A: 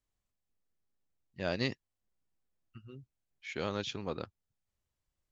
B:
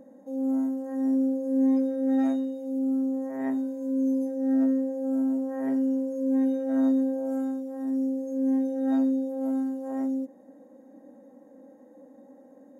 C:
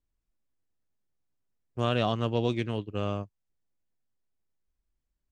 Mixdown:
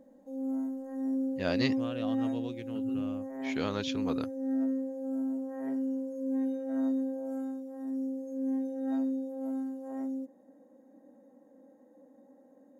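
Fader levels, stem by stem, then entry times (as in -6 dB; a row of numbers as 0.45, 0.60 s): +2.0, -7.0, -13.5 dB; 0.00, 0.00, 0.00 s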